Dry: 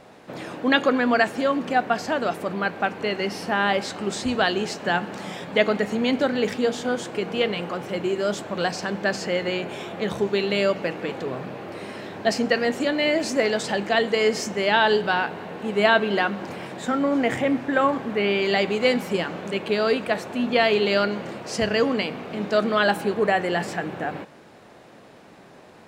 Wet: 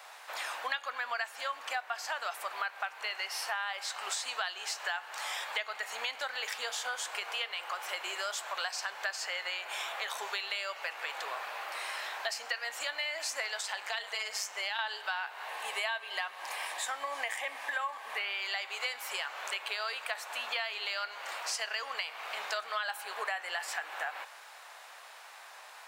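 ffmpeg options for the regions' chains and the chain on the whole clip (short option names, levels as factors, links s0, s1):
-filter_complex "[0:a]asettb=1/sr,asplit=3[s0][s1][s2];[s0]atrim=end=13.614[s3];[s1]atrim=start=13.61:end=14.79,asetpts=PTS-STARTPTS,afade=t=in:d=0.004:c=qsin,afade=t=out:st=1.176:d=0.004:c=qsin,acrossover=split=310|3000[s4][s5][s6];[s5]acompressor=threshold=0.0891:ratio=6:attack=3.2:release=140:knee=2.83:detection=peak[s7];[s4][s7][s6]amix=inputs=3:normalize=0,tremolo=f=200:d=0.621[s8];[s2]atrim=start=14.786[s9];[s3][s8]acrossfade=d=0.004:c1=hsin:c2=qsin[s10];[s10][s9]acrossfade=d=0.004:c1=qsin:c2=hsin,asettb=1/sr,asplit=3[s11][s12][s13];[s11]atrim=end=15.484[s14];[s12]atrim=start=15.48:end=18.19,asetpts=PTS-STARTPTS,afade=t=in:d=0.004:c=qsin,afade=t=out:st=2.706:d=0.004:c=qsin,asuperstop=centerf=1400:order=4:qfactor=7.1,equalizer=f=9900:t=o:w=0.3:g=7[s15];[s13]atrim=start=18.186[s16];[s14][s15]acrossfade=d=0.004:c1=hsin:c2=qsin[s17];[s17][s16]acrossfade=d=0.004:c1=qsin:c2=hsin,highpass=f=860:w=0.5412,highpass=f=860:w=1.3066,highshelf=f=9100:g=10,acompressor=threshold=0.0158:ratio=6,volume=1.41"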